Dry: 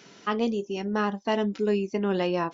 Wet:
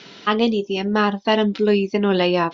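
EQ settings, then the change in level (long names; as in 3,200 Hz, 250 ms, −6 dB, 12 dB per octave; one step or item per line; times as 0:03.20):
low-pass with resonance 3,900 Hz, resonance Q 2.2
+7.5 dB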